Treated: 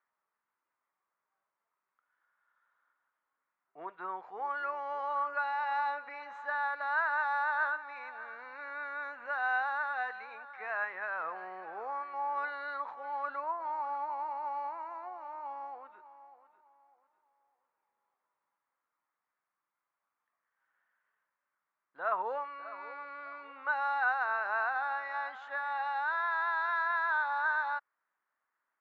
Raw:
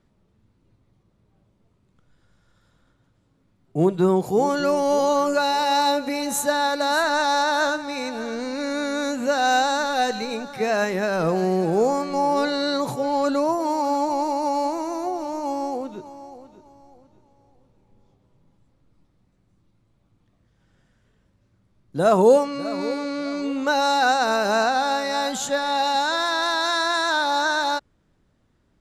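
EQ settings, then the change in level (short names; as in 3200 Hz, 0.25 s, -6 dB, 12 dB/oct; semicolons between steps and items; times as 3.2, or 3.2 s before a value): Butterworth band-pass 1400 Hz, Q 1.3; air absorption 140 m; -5.0 dB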